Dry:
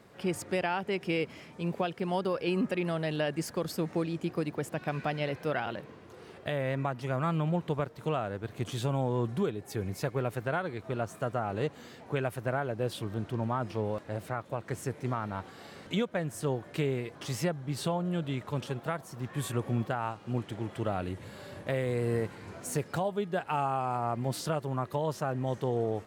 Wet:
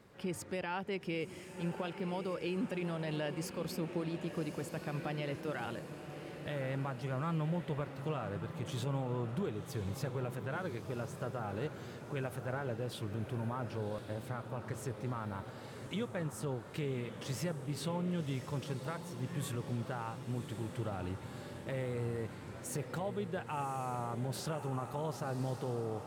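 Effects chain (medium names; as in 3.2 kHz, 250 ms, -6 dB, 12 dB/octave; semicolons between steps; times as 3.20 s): bass shelf 100 Hz +5.5 dB; band-stop 690 Hz, Q 12; peak limiter -24 dBFS, peak gain reduction 6 dB; on a send: echo that smears into a reverb 1107 ms, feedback 61%, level -9.5 dB; on the sum: trim -5 dB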